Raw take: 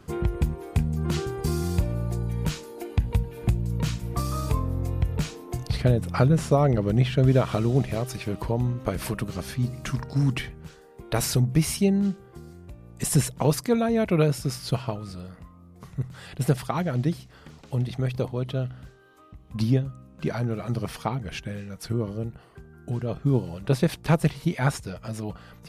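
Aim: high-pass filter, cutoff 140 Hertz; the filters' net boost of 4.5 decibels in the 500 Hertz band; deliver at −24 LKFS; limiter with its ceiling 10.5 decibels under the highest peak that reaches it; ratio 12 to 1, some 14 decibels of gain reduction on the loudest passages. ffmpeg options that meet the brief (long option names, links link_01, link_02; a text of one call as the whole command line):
ffmpeg -i in.wav -af "highpass=140,equalizer=frequency=500:width_type=o:gain=5.5,acompressor=threshold=-27dB:ratio=12,volume=11dB,alimiter=limit=-12dB:level=0:latency=1" out.wav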